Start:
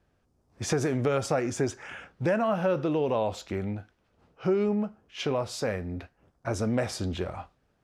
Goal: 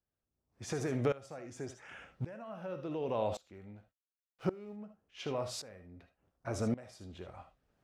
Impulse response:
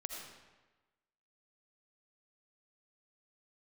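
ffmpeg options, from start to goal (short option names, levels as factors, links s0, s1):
-filter_complex "[0:a]asettb=1/sr,asplit=3[s0][s1][s2];[s0]atrim=end=3.754[s3];[s1]atrim=start=3.75:end=4.76,asetpts=PTS-STARTPTS,afade=t=in:d=0.004:c=qsin,afade=t=out:st=1.006:d=0.004:c=qsin,aeval=exprs='sgn(val(0))*max(abs(val(0))-0.00266,0)':c=same[s4];[s2]atrim=start=4.756[s5];[s3][s4]acrossfade=d=0.004:c1=hsin:c2=qsin[s6];[s6][s5]acrossfade=d=0.004:c1=qsin:c2=hsin[s7];[1:a]atrim=start_sample=2205,atrim=end_sample=3528[s8];[s7][s8]afir=irnorm=-1:irlink=0,aeval=exprs='val(0)*pow(10,-21*if(lt(mod(-0.89*n/s,1),2*abs(-0.89)/1000),1-mod(-0.89*n/s,1)/(2*abs(-0.89)/1000),(mod(-0.89*n/s,1)-2*abs(-0.89)/1000)/(1-2*abs(-0.89)/1000))/20)':c=same"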